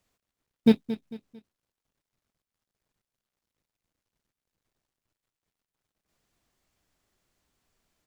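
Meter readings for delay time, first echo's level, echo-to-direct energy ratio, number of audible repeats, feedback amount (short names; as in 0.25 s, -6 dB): 0.224 s, -13.5 dB, -13.0 dB, 3, 36%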